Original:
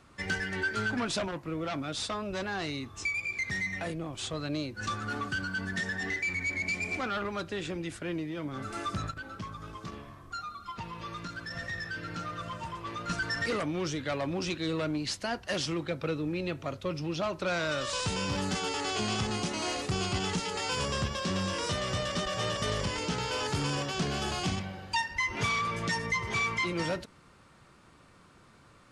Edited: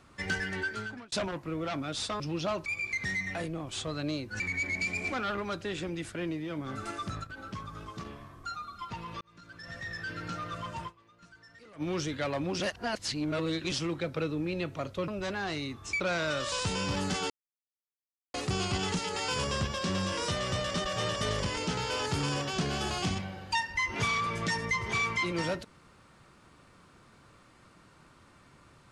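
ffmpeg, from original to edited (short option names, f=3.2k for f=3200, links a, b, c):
-filter_complex "[0:a]asplit=16[a][b][c][d][e][f][g][h][i][j][k][l][m][n][o][p];[a]atrim=end=1.12,asetpts=PTS-STARTPTS,afade=t=out:st=0.49:d=0.63[q];[b]atrim=start=1.12:end=2.202,asetpts=PTS-STARTPTS,afade=t=in:d=0.004:c=hsin[r];[c]atrim=start=16.948:end=17.412[s];[d]atrim=start=3.118:end=4.862[t];[e]atrim=start=6.268:end=8.782[u];[f]atrim=start=8.778:end=9.242,asetpts=PTS-STARTPTS,volume=-3dB[v];[g]atrim=start=9.238:end=11.08,asetpts=PTS-STARTPTS,afade=t=out:st=1.838:d=0.004:c=hsin[w];[h]atrim=start=11.08:end=12.98,asetpts=PTS-STARTPTS,afade=t=in:d=0.89,afade=t=out:st=1.66:d=0.24:c=exp:silence=0.0668344[x];[i]atrim=start=12.98:end=13.45,asetpts=PTS-STARTPTS,volume=-23.5dB[y];[j]atrim=start=13.45:end=14.472,asetpts=PTS-STARTPTS,afade=t=in:d=0.24:c=exp:silence=0.0668344[z];[k]atrim=start=14.468:end=15.592,asetpts=PTS-STARTPTS,areverse[aa];[l]atrim=start=15.588:end=16.952[ab];[m]atrim=start=2.198:end=3.122[ac];[n]atrim=start=17.408:end=18.71,asetpts=PTS-STARTPTS,afade=t=out:st=1.298:d=0.004:c=hsin[ad];[o]atrim=start=18.71:end=19.75,asetpts=PTS-STARTPTS,volume=0[ae];[p]atrim=start=19.75,asetpts=PTS-STARTPTS,afade=t=in:d=0.004:c=hsin[af];[q][r]concat=n=2:v=0:a=1[ag];[ag][s]acrossfade=d=0.004:c1=hsin:c2=hsin[ah];[ah][t]acrossfade=d=0.004:c1=hsin:c2=hsin[ai];[ai][u]acrossfade=d=0.004:c1=hsin:c2=hsin[aj];[aj][v]acrossfade=d=0.004:c1=hsin:c2=hsin[ak];[w][x][y][z]concat=n=4:v=0:a=1[al];[ak][al]acrossfade=d=0.004:c1=hsin:c2=hsin[am];[am][aa]acrossfade=d=0.004:c1=hsin:c2=hsin[an];[an][ab]acrossfade=d=0.004:c1=hsin:c2=hsin[ao];[ao][ac]acrossfade=d=0.004:c1=hsin:c2=hsin[ap];[ad][ae][af]concat=n=3:v=0:a=1[aq];[ap][aq]acrossfade=d=0.004:c1=hsin:c2=hsin"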